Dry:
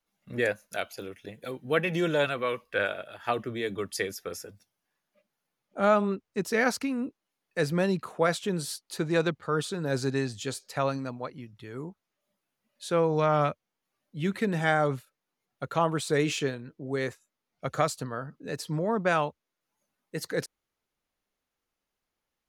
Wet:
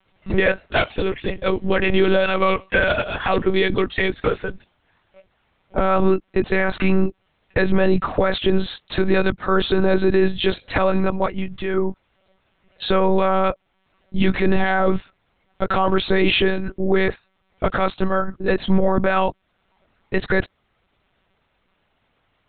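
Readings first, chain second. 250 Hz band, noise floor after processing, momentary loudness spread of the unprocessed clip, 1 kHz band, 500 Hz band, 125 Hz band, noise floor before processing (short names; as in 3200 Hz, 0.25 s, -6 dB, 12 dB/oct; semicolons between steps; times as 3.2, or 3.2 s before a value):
+10.0 dB, -68 dBFS, 15 LU, +8.0 dB, +9.0 dB, +7.5 dB, under -85 dBFS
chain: in parallel at +0.5 dB: compressor, threshold -37 dBFS, peak gain reduction 18.5 dB; on the sum: monotone LPC vocoder at 8 kHz 190 Hz; maximiser +19.5 dB; gain -6 dB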